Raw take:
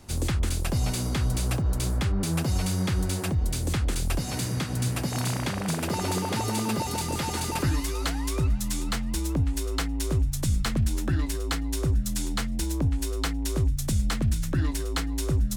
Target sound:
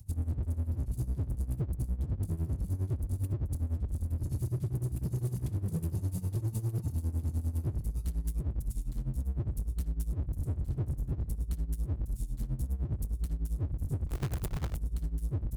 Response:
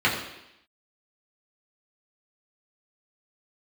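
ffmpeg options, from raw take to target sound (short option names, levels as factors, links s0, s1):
-filter_complex "[0:a]lowshelf=f=160:t=q:w=1.5:g=9,acrossover=split=350[s0][s1];[s1]acompressor=mode=upward:threshold=0.00316:ratio=2.5[s2];[s0][s2]amix=inputs=2:normalize=0,firequalizer=gain_entry='entry(110,0);entry(370,-20);entry(1200,-29);entry(11000,-5)':delay=0.05:min_phase=1,asplit=2[s3][s4];[s4]adelay=61,lowpass=f=2600:p=1,volume=0.631,asplit=2[s5][s6];[s6]adelay=61,lowpass=f=2600:p=1,volume=0.49,asplit=2[s7][s8];[s8]adelay=61,lowpass=f=2600:p=1,volume=0.49,asplit=2[s9][s10];[s10]adelay=61,lowpass=f=2600:p=1,volume=0.49,asplit=2[s11][s12];[s12]adelay=61,lowpass=f=2600:p=1,volume=0.49,asplit=2[s13][s14];[s14]adelay=61,lowpass=f=2600:p=1,volume=0.49[s15];[s5][s7][s9][s11][s13][s15]amix=inputs=6:normalize=0[s16];[s3][s16]amix=inputs=2:normalize=0,asplit=3[s17][s18][s19];[s17]afade=t=out:st=14.07:d=0.02[s20];[s18]acrusher=bits=5:dc=4:mix=0:aa=0.000001,afade=t=in:st=14.07:d=0.02,afade=t=out:st=14.75:d=0.02[s21];[s19]afade=t=in:st=14.75:d=0.02[s22];[s20][s21][s22]amix=inputs=3:normalize=0,asoftclip=type=tanh:threshold=0.237,highpass=f=79:p=1,alimiter=limit=0.0944:level=0:latency=1:release=118,asoftclip=type=hard:threshold=0.0422,tremolo=f=9.9:d=0.83,volume=1.12"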